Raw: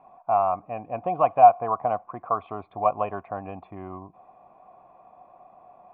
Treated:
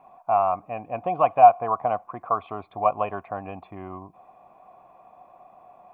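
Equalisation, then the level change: high shelf 2500 Hz +8.5 dB; 0.0 dB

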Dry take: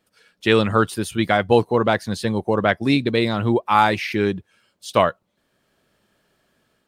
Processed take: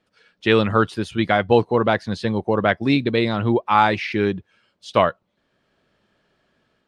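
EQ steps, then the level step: LPF 4700 Hz 12 dB/oct; 0.0 dB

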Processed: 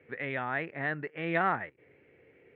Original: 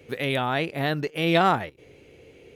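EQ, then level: HPF 100 Hz; ladder low-pass 2100 Hz, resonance 60%; 0.0 dB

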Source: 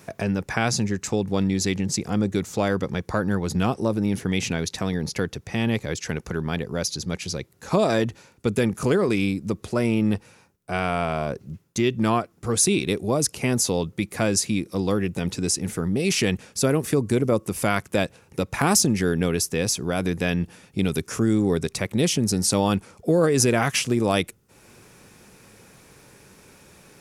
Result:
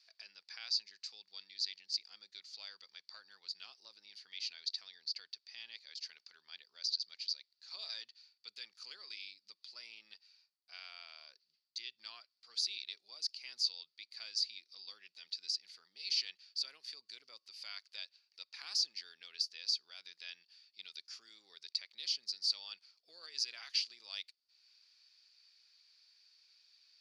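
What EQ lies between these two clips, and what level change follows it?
band-pass 4600 Hz, Q 12; air absorption 290 m; differentiator; +18.0 dB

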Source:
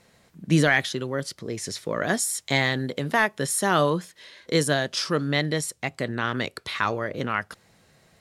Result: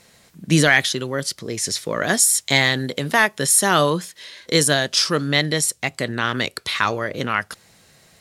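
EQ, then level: high shelf 2600 Hz +8.5 dB; +3.0 dB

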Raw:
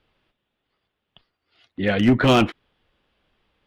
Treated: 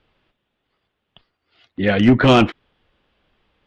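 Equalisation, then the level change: air absorption 61 m; +4.0 dB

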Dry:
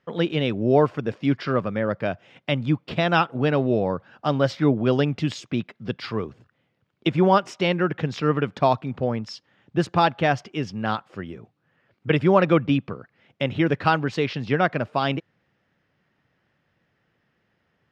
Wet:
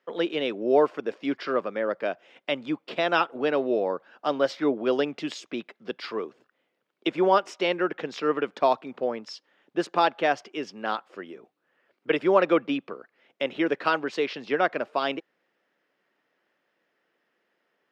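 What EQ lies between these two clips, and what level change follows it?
ladder high-pass 260 Hz, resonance 20%; notch 800 Hz, Q 26; +2.5 dB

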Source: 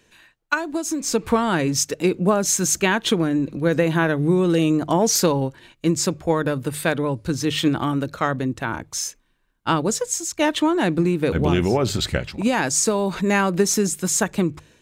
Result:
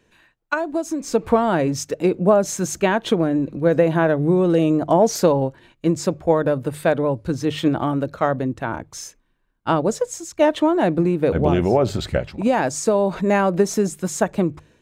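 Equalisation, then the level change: dynamic EQ 630 Hz, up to +8 dB, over -36 dBFS, Q 1.8; high shelf 2200 Hz -9 dB; 0.0 dB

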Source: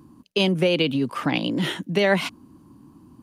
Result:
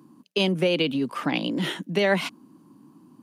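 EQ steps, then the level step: HPF 150 Hz 24 dB/oct; -2.0 dB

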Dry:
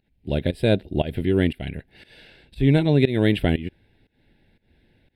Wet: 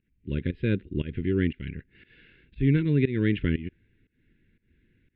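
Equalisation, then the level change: Butterworth band-stop 720 Hz, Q 0.83; LPF 2700 Hz 24 dB/oct; -4.0 dB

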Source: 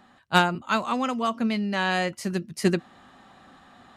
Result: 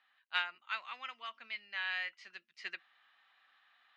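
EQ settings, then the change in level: dynamic EQ 2000 Hz, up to +4 dB, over -38 dBFS, Q 2.4; ladder band-pass 3000 Hz, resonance 20%; air absorption 180 m; +4.0 dB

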